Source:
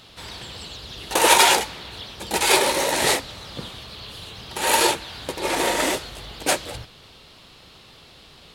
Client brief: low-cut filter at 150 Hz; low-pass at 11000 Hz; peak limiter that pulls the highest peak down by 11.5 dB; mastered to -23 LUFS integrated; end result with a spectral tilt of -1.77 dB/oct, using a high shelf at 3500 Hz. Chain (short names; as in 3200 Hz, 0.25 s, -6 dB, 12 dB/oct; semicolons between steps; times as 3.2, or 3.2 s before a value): HPF 150 Hz; LPF 11000 Hz; high shelf 3500 Hz -5.5 dB; gain +3.5 dB; limiter -10.5 dBFS